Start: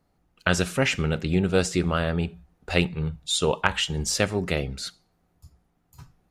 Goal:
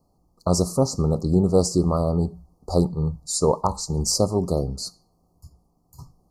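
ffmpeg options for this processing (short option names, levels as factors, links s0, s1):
-af "asuperstop=centerf=2300:order=20:qfactor=0.74,volume=1.58"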